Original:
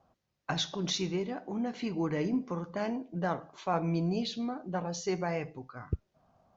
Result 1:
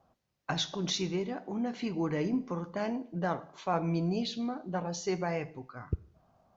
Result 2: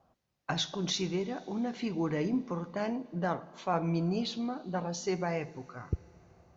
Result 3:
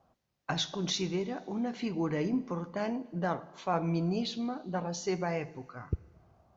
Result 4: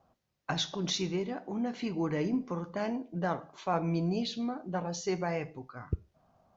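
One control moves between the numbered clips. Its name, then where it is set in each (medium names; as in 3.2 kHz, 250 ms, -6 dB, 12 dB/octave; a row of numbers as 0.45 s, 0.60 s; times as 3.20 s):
Schroeder reverb, RT60: 0.72 s, 4.4 s, 2 s, 0.3 s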